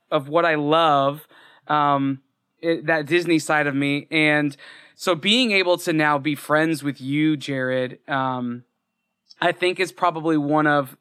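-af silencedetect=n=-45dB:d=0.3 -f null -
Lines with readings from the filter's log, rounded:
silence_start: 2.19
silence_end: 2.62 | silence_duration: 0.44
silence_start: 8.62
silence_end: 9.30 | silence_duration: 0.68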